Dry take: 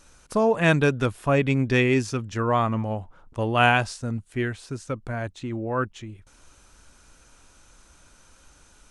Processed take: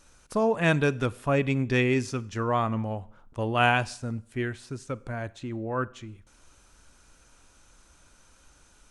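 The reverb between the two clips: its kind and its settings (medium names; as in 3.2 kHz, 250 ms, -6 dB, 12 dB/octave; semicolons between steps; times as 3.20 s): Schroeder reverb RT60 0.62 s, combs from 32 ms, DRR 20 dB; trim -3.5 dB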